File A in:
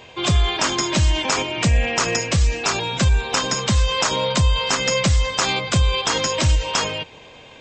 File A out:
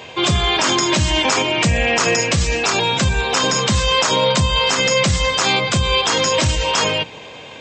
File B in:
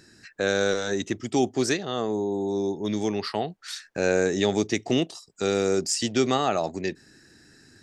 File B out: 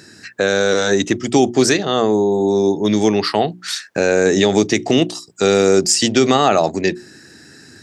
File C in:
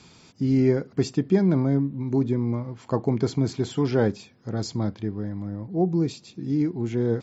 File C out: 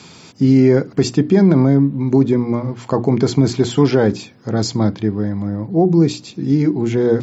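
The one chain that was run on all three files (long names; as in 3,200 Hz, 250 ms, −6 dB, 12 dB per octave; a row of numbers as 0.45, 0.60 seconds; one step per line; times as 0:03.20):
high-pass filter 93 Hz 12 dB per octave
mains-hum notches 60/120/180/240/300/360 Hz
brickwall limiter −15 dBFS
loudness normalisation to −16 LKFS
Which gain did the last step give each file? +7.5, +12.0, +11.5 decibels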